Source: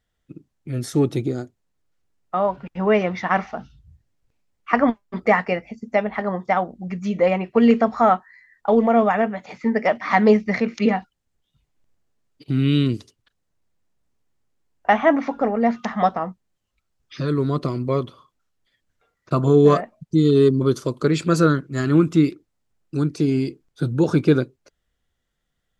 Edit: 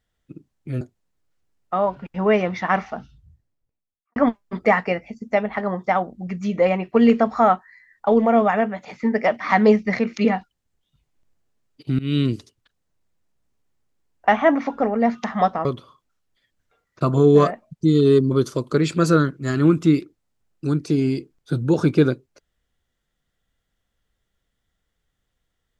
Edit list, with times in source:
0.81–1.42 cut
3.55–4.77 studio fade out
12.6–12.9 fade in equal-power, from -21 dB
16.26–17.95 cut

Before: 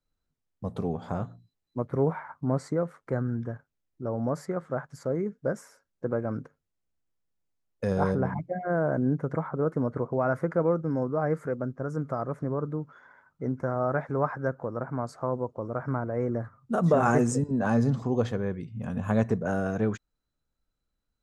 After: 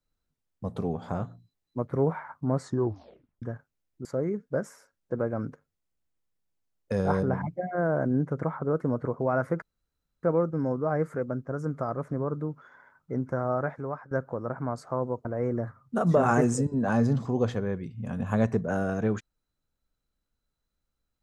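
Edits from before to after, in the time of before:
2.61 tape stop 0.81 s
4.05–4.97 cut
10.54 insert room tone 0.61 s
13.81–14.42 fade out, to -17.5 dB
15.56–16.02 cut

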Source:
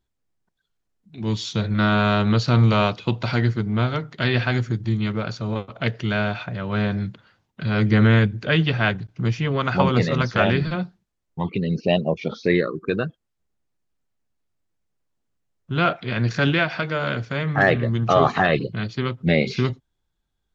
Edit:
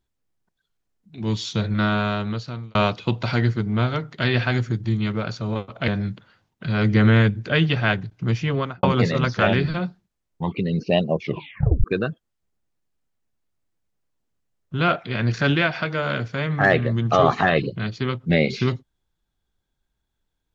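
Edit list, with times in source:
1.64–2.75 fade out
5.88–6.85 cut
9.52–9.8 studio fade out
12.19 tape stop 0.62 s

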